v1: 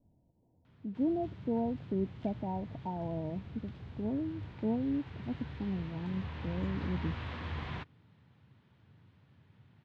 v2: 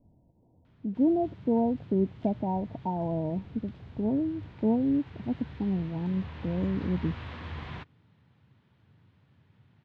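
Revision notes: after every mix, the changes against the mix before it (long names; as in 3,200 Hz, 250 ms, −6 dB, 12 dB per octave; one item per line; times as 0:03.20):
speech +7.0 dB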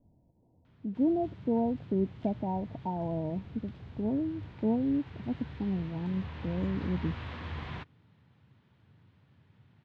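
speech −3.0 dB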